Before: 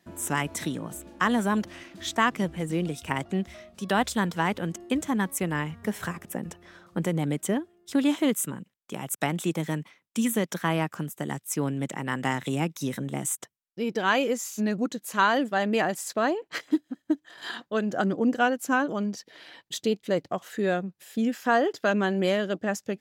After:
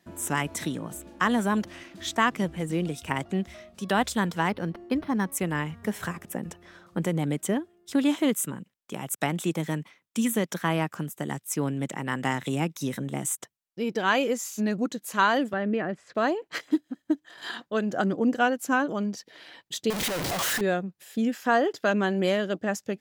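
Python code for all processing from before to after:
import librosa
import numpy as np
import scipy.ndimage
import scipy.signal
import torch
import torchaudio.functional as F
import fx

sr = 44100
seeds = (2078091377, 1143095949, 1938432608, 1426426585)

y = fx.chain(x, sr, fx.air_absorb(metres=62.0),
    fx.resample_linear(factor=6), at=(4.49, 5.32))
y = fx.chain(y, sr, fx.lowpass(hz=1600.0, slope=12),
    fx.peak_eq(hz=860.0, db=-11.0, octaves=0.79),
    fx.band_squash(depth_pct=70), at=(15.53, 16.15))
y = fx.chain(y, sr, fx.clip_1bit(),
    fx.low_shelf(hz=320.0, db=-11.0),
    fx.leveller(passes=2), at=(19.9, 20.61))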